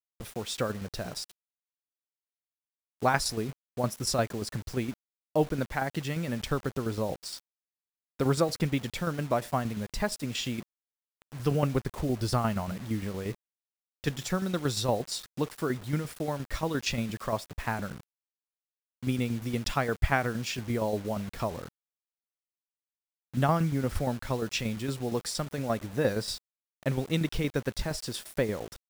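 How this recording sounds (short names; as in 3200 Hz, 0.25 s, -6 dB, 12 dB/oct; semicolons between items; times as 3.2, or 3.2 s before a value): tremolo saw down 8.6 Hz, depth 60%; a quantiser's noise floor 8-bit, dither none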